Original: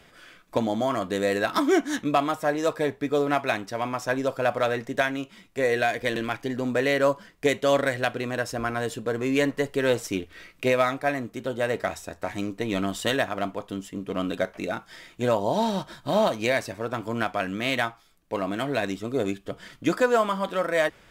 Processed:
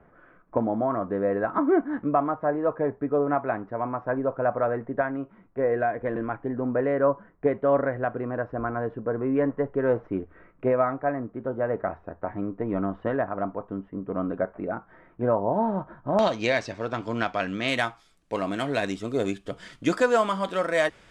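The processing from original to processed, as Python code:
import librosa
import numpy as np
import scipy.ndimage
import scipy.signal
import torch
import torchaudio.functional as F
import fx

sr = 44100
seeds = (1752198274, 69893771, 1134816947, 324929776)

y = fx.lowpass(x, sr, hz=fx.steps((0.0, 1400.0), (16.19, 6200.0), (17.68, 10000.0)), slope=24)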